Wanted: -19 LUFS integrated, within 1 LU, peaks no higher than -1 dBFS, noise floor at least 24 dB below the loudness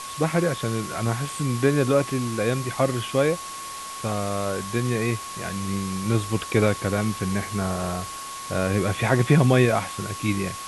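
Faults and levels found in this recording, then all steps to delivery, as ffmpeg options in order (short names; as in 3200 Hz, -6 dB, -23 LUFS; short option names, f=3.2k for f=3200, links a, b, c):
steady tone 1100 Hz; tone level -35 dBFS; noise floor -35 dBFS; noise floor target -49 dBFS; loudness -24.5 LUFS; peak -5.0 dBFS; loudness target -19.0 LUFS
-> -af "bandreject=f=1.1k:w=30"
-af "afftdn=nr=14:nf=-35"
-af "volume=5.5dB,alimiter=limit=-1dB:level=0:latency=1"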